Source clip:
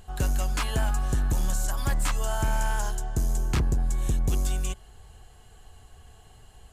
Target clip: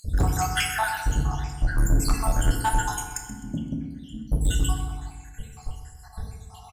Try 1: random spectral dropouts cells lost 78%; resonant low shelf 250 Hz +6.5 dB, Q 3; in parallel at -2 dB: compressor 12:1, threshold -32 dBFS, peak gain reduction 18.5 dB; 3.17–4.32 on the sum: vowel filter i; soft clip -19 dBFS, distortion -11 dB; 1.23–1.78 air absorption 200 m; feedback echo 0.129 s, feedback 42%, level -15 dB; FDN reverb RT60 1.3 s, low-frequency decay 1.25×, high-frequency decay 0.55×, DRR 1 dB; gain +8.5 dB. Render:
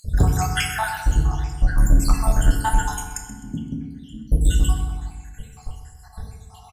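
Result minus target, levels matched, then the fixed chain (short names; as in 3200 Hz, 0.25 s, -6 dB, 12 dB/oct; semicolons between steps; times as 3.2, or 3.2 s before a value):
soft clip: distortion -6 dB
random spectral dropouts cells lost 78%; resonant low shelf 250 Hz +6.5 dB, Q 3; in parallel at -2 dB: compressor 12:1, threshold -32 dBFS, peak gain reduction 18.5 dB; 3.17–4.32 on the sum: vowel filter i; soft clip -26.5 dBFS, distortion -5 dB; 1.23–1.78 air absorption 200 m; feedback echo 0.129 s, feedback 42%, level -15 dB; FDN reverb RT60 1.3 s, low-frequency decay 1.25×, high-frequency decay 0.55×, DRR 1 dB; gain +8.5 dB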